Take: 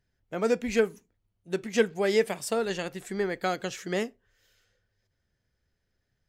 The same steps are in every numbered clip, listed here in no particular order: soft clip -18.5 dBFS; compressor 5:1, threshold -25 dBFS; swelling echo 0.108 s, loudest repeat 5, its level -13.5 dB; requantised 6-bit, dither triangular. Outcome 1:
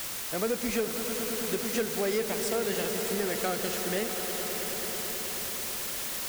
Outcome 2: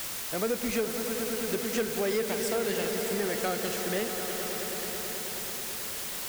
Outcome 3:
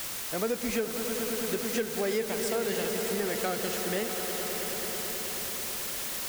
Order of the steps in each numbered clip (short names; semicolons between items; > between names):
soft clip > requantised > swelling echo > compressor; swelling echo > soft clip > requantised > compressor; requantised > swelling echo > compressor > soft clip